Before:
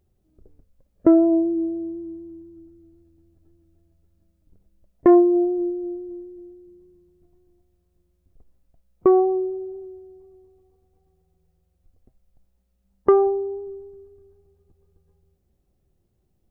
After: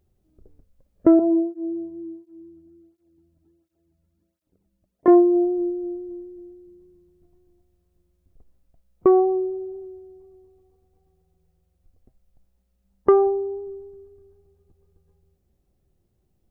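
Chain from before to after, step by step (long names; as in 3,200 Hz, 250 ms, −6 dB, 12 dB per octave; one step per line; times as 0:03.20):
0:01.19–0:05.08: through-zero flanger with one copy inverted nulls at 1.4 Hz, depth 2.7 ms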